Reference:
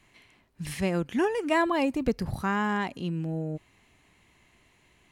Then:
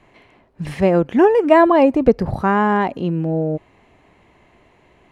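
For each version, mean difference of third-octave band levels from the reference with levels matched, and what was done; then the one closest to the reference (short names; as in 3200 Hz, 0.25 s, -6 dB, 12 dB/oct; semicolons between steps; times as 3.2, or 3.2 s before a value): 5.5 dB: LPF 1800 Hz 6 dB/oct; bell 580 Hz +8.5 dB 1.8 oct; gain +8 dB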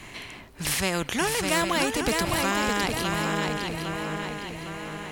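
15.0 dB: on a send: swung echo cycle 0.809 s, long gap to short 3:1, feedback 32%, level -6.5 dB; on the sum: spectral compressor 2:1; gain +4 dB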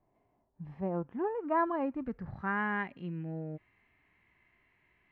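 7.5 dB: harmonic-percussive split percussive -10 dB; low-pass sweep 710 Hz -> 2000 Hz, 0.29–2.69; gain -7.5 dB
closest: first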